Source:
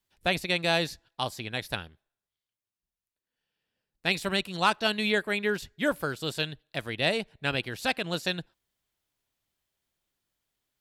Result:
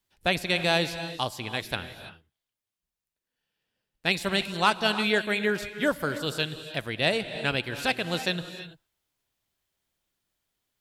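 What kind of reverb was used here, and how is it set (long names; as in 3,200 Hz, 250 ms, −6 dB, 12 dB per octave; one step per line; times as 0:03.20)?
reverb whose tail is shaped and stops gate 360 ms rising, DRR 10.5 dB
level +1.5 dB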